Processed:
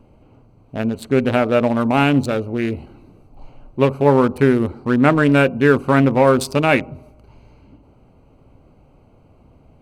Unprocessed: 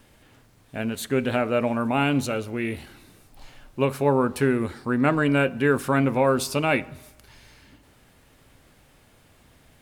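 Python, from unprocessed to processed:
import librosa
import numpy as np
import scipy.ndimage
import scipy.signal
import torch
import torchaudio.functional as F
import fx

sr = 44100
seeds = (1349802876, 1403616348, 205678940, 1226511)

y = fx.wiener(x, sr, points=25)
y = F.gain(torch.from_numpy(y), 7.5).numpy()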